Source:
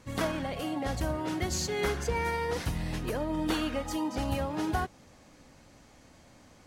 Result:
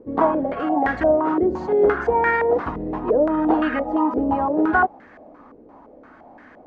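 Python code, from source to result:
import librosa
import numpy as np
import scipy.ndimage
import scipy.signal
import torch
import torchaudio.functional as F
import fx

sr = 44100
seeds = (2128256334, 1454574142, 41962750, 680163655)

y = fx.low_shelf_res(x, sr, hz=190.0, db=-10.0, q=1.5)
y = fx.notch(y, sr, hz=540.0, q=14.0)
y = fx.filter_held_lowpass(y, sr, hz=5.8, low_hz=450.0, high_hz=1700.0)
y = y * librosa.db_to_amplitude(8.0)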